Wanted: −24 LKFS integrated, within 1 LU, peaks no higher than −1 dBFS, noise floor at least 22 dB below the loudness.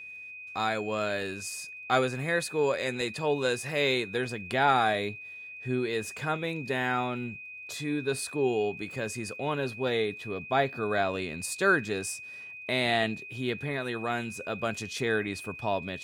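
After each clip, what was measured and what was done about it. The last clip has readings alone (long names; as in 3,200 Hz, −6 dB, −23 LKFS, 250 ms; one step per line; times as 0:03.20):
crackle rate 27 per second; interfering tone 2,500 Hz; level of the tone −41 dBFS; integrated loudness −30.0 LKFS; sample peak −10.5 dBFS; target loudness −24.0 LKFS
→ click removal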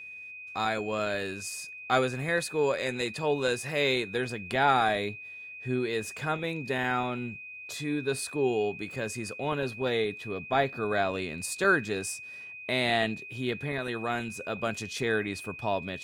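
crackle rate 0.062 per second; interfering tone 2,500 Hz; level of the tone −41 dBFS
→ notch filter 2,500 Hz, Q 30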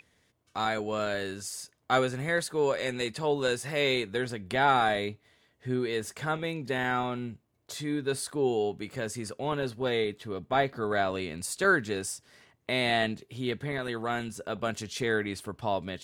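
interfering tone none found; integrated loudness −30.0 LKFS; sample peak −10.5 dBFS; target loudness −24.0 LKFS
→ level +6 dB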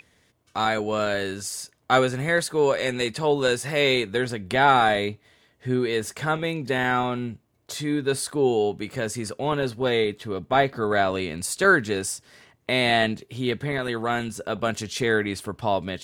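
integrated loudness −24.0 LKFS; sample peak −4.5 dBFS; background noise floor −64 dBFS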